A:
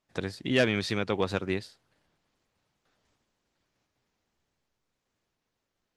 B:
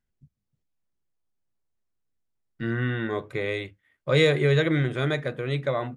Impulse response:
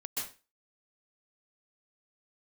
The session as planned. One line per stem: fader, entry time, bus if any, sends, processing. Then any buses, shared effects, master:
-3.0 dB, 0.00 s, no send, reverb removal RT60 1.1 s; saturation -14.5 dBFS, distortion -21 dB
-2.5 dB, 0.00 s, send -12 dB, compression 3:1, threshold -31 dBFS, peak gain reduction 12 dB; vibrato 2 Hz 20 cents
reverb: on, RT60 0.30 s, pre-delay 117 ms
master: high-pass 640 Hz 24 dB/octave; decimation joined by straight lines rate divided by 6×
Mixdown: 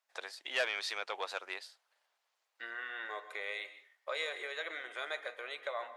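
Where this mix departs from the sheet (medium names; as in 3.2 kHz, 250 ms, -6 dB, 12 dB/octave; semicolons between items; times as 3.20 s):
stem A: missing reverb removal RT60 1.1 s; master: missing decimation joined by straight lines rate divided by 6×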